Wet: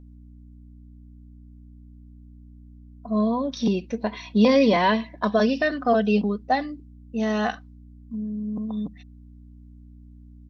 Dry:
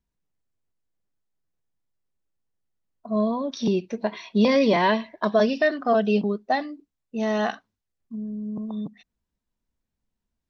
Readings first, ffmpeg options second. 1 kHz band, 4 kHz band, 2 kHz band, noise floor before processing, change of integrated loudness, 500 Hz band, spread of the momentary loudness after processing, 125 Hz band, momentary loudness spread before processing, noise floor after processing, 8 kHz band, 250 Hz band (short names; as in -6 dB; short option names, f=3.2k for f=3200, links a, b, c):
+1.0 dB, +0.5 dB, 0.0 dB, -84 dBFS, +0.5 dB, -0.5 dB, 15 LU, +2.0 dB, 15 LU, -47 dBFS, n/a, +2.0 dB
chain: -af "aeval=exprs='val(0)+0.00562*(sin(2*PI*60*n/s)+sin(2*PI*2*60*n/s)/2+sin(2*PI*3*60*n/s)/3+sin(2*PI*4*60*n/s)/4+sin(2*PI*5*60*n/s)/5)':c=same,aecho=1:1:4:0.37"